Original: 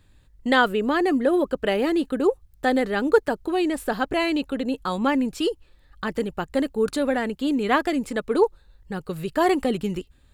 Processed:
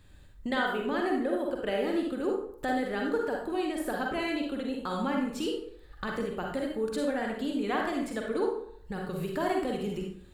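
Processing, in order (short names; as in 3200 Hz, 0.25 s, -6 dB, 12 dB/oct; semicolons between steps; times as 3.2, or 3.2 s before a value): compressor 2:1, threshold -39 dBFS, peak gain reduction 15 dB; reverb RT60 0.65 s, pre-delay 37 ms, DRR 0 dB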